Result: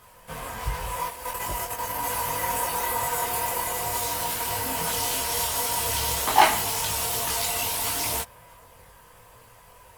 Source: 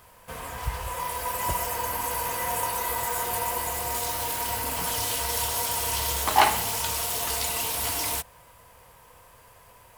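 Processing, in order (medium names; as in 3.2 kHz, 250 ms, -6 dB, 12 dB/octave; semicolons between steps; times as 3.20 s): 1.08–2.03 s: level held to a coarse grid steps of 10 dB; chorus voices 4, 0.44 Hz, delay 22 ms, depth 4.4 ms; trim +4.5 dB; Opus 48 kbps 48 kHz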